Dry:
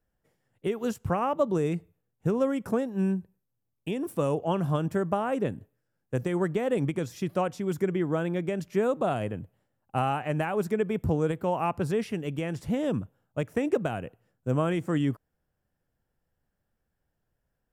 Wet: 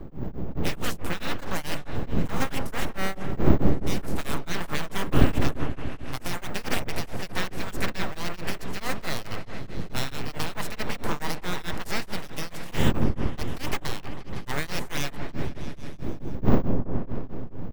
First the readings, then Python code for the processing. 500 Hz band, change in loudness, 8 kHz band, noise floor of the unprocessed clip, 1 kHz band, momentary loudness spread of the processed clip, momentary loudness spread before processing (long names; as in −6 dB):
−5.5 dB, −1.5 dB, +10.5 dB, −80 dBFS, −1.5 dB, 12 LU, 8 LU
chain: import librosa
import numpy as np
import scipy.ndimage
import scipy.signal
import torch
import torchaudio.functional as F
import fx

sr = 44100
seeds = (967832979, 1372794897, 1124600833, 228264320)

y = fx.spec_clip(x, sr, under_db=28)
y = fx.dmg_wind(y, sr, seeds[0], corner_hz=160.0, level_db=-25.0)
y = np.repeat(y[::2], 2)[:len(y)]
y = np.abs(y)
y = fx.echo_opening(y, sr, ms=159, hz=750, octaves=1, feedback_pct=70, wet_db=-6)
y = y * np.abs(np.cos(np.pi * 4.6 * np.arange(len(y)) / sr))